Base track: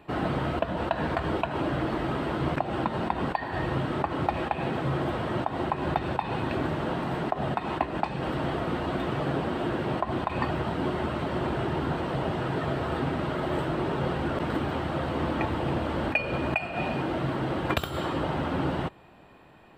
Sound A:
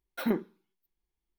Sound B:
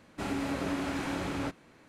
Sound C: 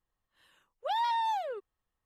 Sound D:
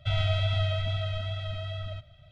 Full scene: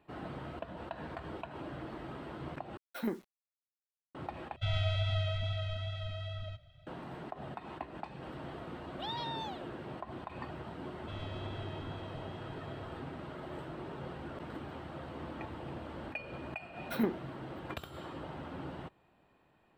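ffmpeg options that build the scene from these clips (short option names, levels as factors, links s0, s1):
-filter_complex "[1:a]asplit=2[s0][s1];[4:a]asplit=2[s2][s3];[0:a]volume=0.178[s4];[s0]acrusher=bits=8:mix=0:aa=0.000001[s5];[3:a]equalizer=f=3600:t=o:w=1.1:g=13.5[s6];[s4]asplit=3[s7][s8][s9];[s7]atrim=end=2.774[s10];[s5]atrim=end=1.38,asetpts=PTS-STARTPTS,volume=0.447[s11];[s8]atrim=start=4.146:end=4.564[s12];[s2]atrim=end=2.31,asetpts=PTS-STARTPTS,volume=0.531[s13];[s9]atrim=start=6.866[s14];[s6]atrim=end=2.05,asetpts=PTS-STARTPTS,volume=0.224,afade=t=in:d=0.004:c=hsin,afade=t=out:st=2.046:d=0.004:c=hsin,adelay=8130[s15];[s3]atrim=end=2.31,asetpts=PTS-STARTPTS,volume=0.133,afade=t=in:d=0.004:c=hsin,afade=t=out:st=2.306:d=0.004:c=hsin,adelay=11020[s16];[s1]atrim=end=1.38,asetpts=PTS-STARTPTS,volume=0.708,afade=t=in:d=0.004:c=hsin,afade=t=out:st=1.376:d=0.004:c=hsin,adelay=16730[s17];[s10][s11]acrossfade=d=0.004:c1=hsin:c2=hsin[s18];[s18][s12]acrossfade=d=0.004:c1=hsin:c2=hsin[s19];[s19][s13]acrossfade=d=0.004:c1=hsin:c2=hsin[s20];[s20][s14]acrossfade=d=0.004:c1=hsin:c2=hsin[s21];[s21][s15][s16][s17]amix=inputs=4:normalize=0"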